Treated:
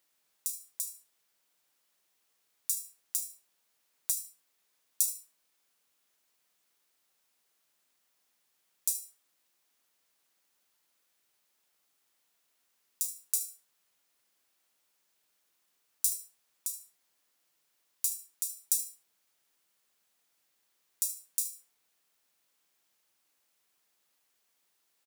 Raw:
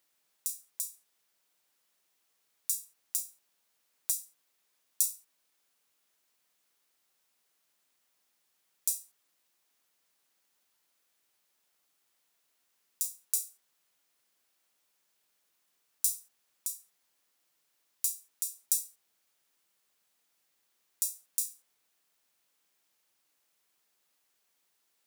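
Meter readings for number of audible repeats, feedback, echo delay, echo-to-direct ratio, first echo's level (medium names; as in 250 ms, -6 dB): 2, 19%, 75 ms, -12.5 dB, -12.5 dB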